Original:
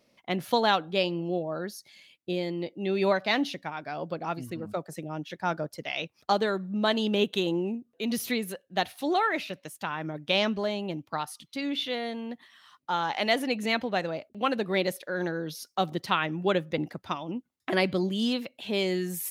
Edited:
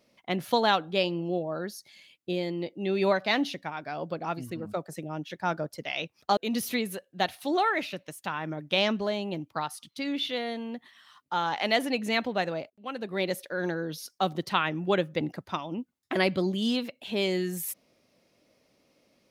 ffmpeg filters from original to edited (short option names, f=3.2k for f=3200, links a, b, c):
-filter_complex "[0:a]asplit=3[a][b][c];[a]atrim=end=6.372[d];[b]atrim=start=7.938:end=14.27,asetpts=PTS-STARTPTS,afade=t=out:st=6.328:d=0.004:c=hsin:silence=0.0749894[e];[c]atrim=start=14.27,asetpts=PTS-STARTPTS,afade=t=in:d=0.72:silence=0.0749894[f];[e][f]concat=n=2:v=0:a=1[g];[d][g]acrossfade=d=0.004:c1=hsin:c2=hsin"